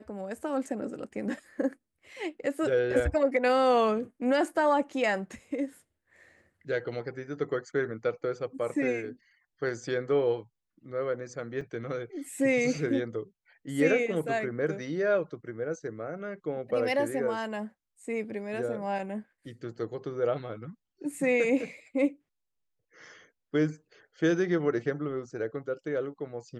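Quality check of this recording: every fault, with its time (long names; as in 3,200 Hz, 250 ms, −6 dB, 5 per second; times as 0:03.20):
0:11.61: drop-out 3.3 ms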